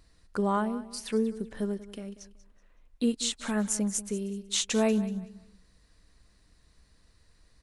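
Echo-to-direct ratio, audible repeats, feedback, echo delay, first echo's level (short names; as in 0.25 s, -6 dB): -15.5 dB, 2, 27%, 0.188 s, -16.0 dB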